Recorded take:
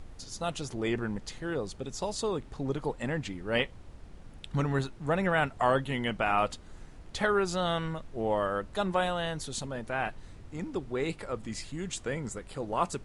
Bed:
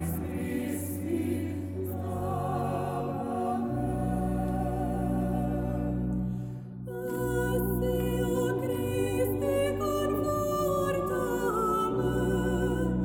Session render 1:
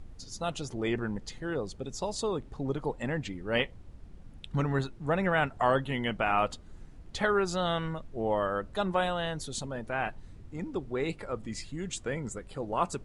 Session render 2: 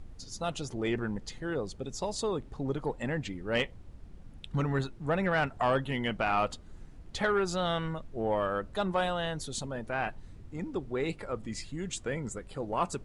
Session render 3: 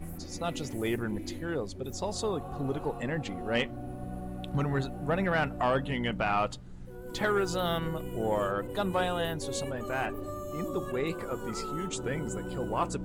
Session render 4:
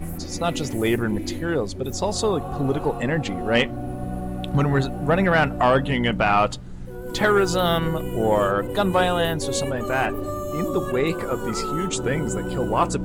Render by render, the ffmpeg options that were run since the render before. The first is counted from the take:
ffmpeg -i in.wav -af "afftdn=noise_reduction=7:noise_floor=-49" out.wav
ffmpeg -i in.wav -af "asoftclip=type=tanh:threshold=-17.5dB" out.wav
ffmpeg -i in.wav -i bed.wav -filter_complex "[1:a]volume=-10dB[link_01];[0:a][link_01]amix=inputs=2:normalize=0" out.wav
ffmpeg -i in.wav -af "volume=9.5dB" out.wav

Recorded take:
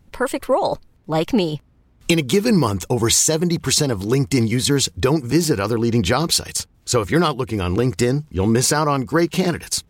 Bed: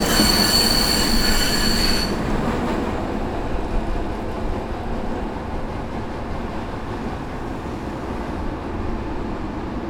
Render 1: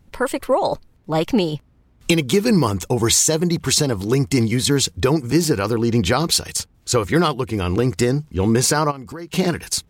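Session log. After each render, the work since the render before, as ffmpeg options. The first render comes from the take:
ffmpeg -i in.wav -filter_complex "[0:a]asplit=3[link_01][link_02][link_03];[link_01]afade=type=out:start_time=8.9:duration=0.02[link_04];[link_02]acompressor=threshold=-30dB:ratio=6:attack=3.2:release=140:knee=1:detection=peak,afade=type=in:start_time=8.9:duration=0.02,afade=type=out:start_time=9.31:duration=0.02[link_05];[link_03]afade=type=in:start_time=9.31:duration=0.02[link_06];[link_04][link_05][link_06]amix=inputs=3:normalize=0" out.wav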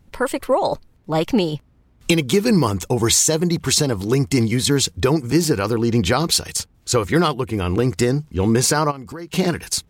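ffmpeg -i in.wav -filter_complex "[0:a]asettb=1/sr,asplit=3[link_01][link_02][link_03];[link_01]atrim=end=7.344[link_04];[link_02]atrim=start=7.34:end=7.8,asetpts=PTS-STARTPTS,afade=type=in:duration=0.004:curve=qsin,afade=type=out:start_time=0.456:duration=0.004:curve=qsin,equalizer=frequency=5100:width=1.5:gain=-5[link_05];[link_03]atrim=start=7.796[link_06];[link_04][link_05]acrossfade=duration=0.004:curve1=hsin:curve2=qsin[link_07];[link_07][link_06]acrossfade=duration=0.004:curve1=qsin:curve2=hsin" out.wav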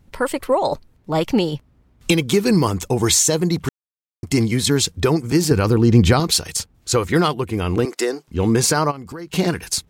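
ffmpeg -i in.wav -filter_complex "[0:a]asettb=1/sr,asplit=3[link_01][link_02][link_03];[link_01]atrim=end=5.514[link_04];[link_02]atrim=start=5.51:end=6.2,asetpts=PTS-STARTPTS,afade=type=in:duration=0.004:curve=qsin,afade=type=out:start_time=0.686:duration=0.004:curve=qsin,lowshelf=frequency=220:gain=10[link_05];[link_03]atrim=start=6.196[link_06];[link_04][link_05]acrossfade=duration=0.004:curve1=hsin:curve2=qsin[link_07];[link_07][link_06]acrossfade=duration=0.004:curve1=qsin:curve2=hsin,asettb=1/sr,asplit=3[link_08][link_09][link_10];[link_08]atrim=end=7.854[link_11];[link_09]atrim=start=7.85:end=8.28,asetpts=PTS-STARTPTS,afade=type=in:duration=0.004:curve=qsin,afade=type=out:start_time=0.426:duration=0.004:curve=qsin,highpass=frequency=340:width=0.5412,highpass=frequency=340:width=1.3066[link_12];[link_10]atrim=start=8.276[link_13];[link_11][link_12]acrossfade=duration=0.004:curve1=hsin:curve2=qsin[link_14];[link_14][link_13]acrossfade=duration=0.004:curve1=qsin:curve2=hsin,asplit=3[link_15][link_16][link_17];[link_15]atrim=end=3.69,asetpts=PTS-STARTPTS,afade=type=out:start_time=3.686:duration=0.004:curve=hsin[link_18];[link_16]atrim=start=3.69:end=4.23,asetpts=PTS-STARTPTS,volume=0[link_19];[link_17]atrim=start=4.23,asetpts=PTS-STARTPTS,afade=type=in:duration=0.004:curve=hsin[link_20];[link_18][link_19][link_20]concat=n=3:v=0:a=1" out.wav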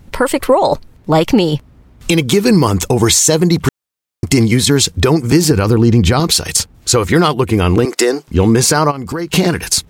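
ffmpeg -i in.wav -af "acompressor=threshold=-21dB:ratio=2.5,alimiter=level_in=12dB:limit=-1dB:release=50:level=0:latency=1" out.wav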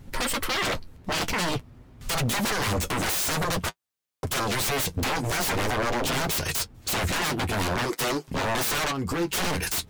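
ffmpeg -i in.wav -af "aeval=exprs='0.133*(abs(mod(val(0)/0.133+3,4)-2)-1)':channel_layout=same,flanger=delay=7.4:depth=4.1:regen=-39:speed=0.48:shape=sinusoidal" out.wav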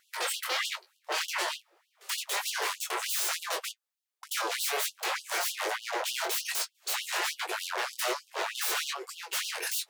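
ffmpeg -i in.wav -af "flanger=delay=19:depth=5.7:speed=1.2,afftfilt=real='re*gte(b*sr/1024,320*pow(2800/320,0.5+0.5*sin(2*PI*3.3*pts/sr)))':imag='im*gte(b*sr/1024,320*pow(2800/320,0.5+0.5*sin(2*PI*3.3*pts/sr)))':win_size=1024:overlap=0.75" out.wav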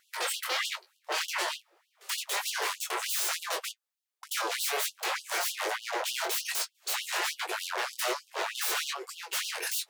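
ffmpeg -i in.wav -af anull out.wav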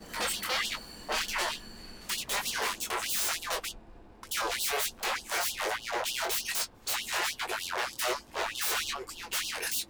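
ffmpeg -i in.wav -i bed.wav -filter_complex "[1:a]volume=-28.5dB[link_01];[0:a][link_01]amix=inputs=2:normalize=0" out.wav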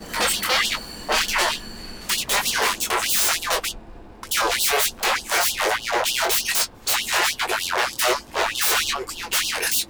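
ffmpeg -i in.wav -af "volume=10.5dB" out.wav

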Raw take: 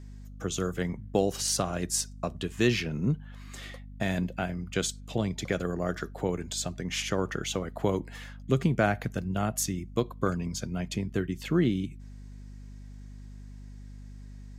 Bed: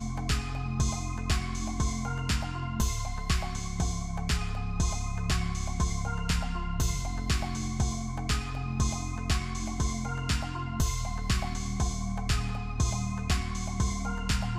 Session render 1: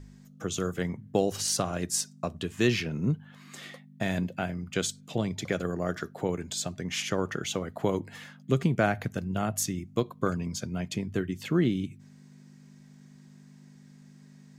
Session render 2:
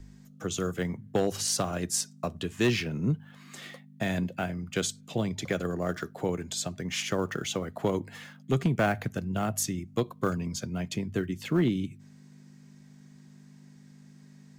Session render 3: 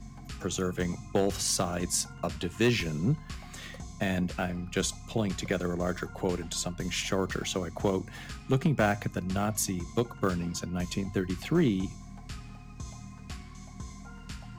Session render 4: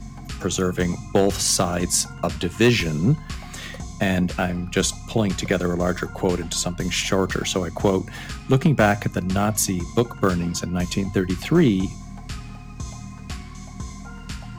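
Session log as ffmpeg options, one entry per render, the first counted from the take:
ffmpeg -i in.wav -af "bandreject=frequency=50:width_type=h:width=4,bandreject=frequency=100:width_type=h:width=4" out.wav
ffmpeg -i in.wav -filter_complex "[0:a]acrossover=split=190|930|2500[link_01][link_02][link_03][link_04];[link_03]acrusher=bits=4:mode=log:mix=0:aa=0.000001[link_05];[link_01][link_02][link_05][link_04]amix=inputs=4:normalize=0,asoftclip=type=hard:threshold=-17.5dB" out.wav
ffmpeg -i in.wav -i bed.wav -filter_complex "[1:a]volume=-14dB[link_01];[0:a][link_01]amix=inputs=2:normalize=0" out.wav
ffmpeg -i in.wav -af "volume=8.5dB" out.wav

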